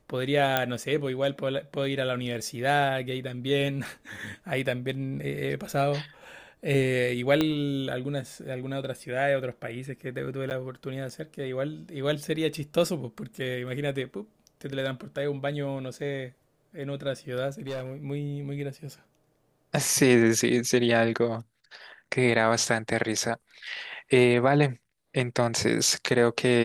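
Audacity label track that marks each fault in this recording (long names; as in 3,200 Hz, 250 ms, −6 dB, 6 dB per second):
0.570000	0.570000	click −8 dBFS
7.410000	7.410000	click −11 dBFS
10.500000	10.510000	drop-out 9.2 ms
17.480000	17.940000	clipping −29.5 dBFS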